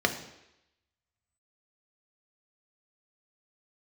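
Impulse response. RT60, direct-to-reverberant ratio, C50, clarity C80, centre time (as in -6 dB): 0.85 s, 4.5 dB, 10.5 dB, 13.0 dB, 13 ms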